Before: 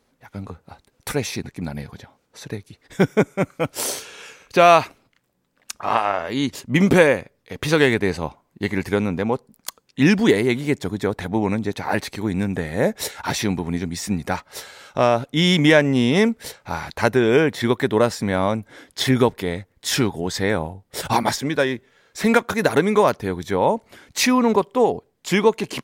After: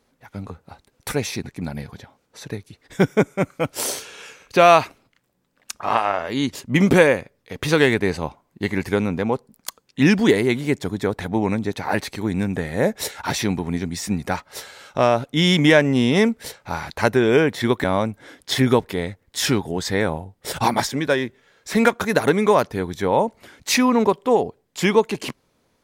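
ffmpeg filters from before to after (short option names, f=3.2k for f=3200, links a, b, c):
-filter_complex "[0:a]asplit=2[a][b];[a]atrim=end=17.842[c];[b]atrim=start=18.328[d];[c][d]acrossfade=d=0.004:c1=hsin:c2=hsin"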